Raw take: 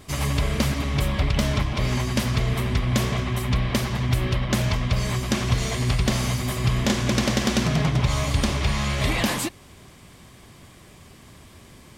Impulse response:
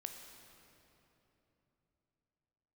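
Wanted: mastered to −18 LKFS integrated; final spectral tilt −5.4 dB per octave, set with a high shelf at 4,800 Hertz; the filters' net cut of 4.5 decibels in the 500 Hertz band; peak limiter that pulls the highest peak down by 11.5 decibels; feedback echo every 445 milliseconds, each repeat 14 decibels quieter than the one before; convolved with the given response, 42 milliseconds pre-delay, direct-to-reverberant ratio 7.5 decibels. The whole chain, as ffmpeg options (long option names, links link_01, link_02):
-filter_complex "[0:a]equalizer=frequency=500:width_type=o:gain=-6,highshelf=frequency=4800:gain=-6.5,alimiter=limit=-20dB:level=0:latency=1,aecho=1:1:445|890:0.2|0.0399,asplit=2[link_01][link_02];[1:a]atrim=start_sample=2205,adelay=42[link_03];[link_02][link_03]afir=irnorm=-1:irlink=0,volume=-4.5dB[link_04];[link_01][link_04]amix=inputs=2:normalize=0,volume=10dB"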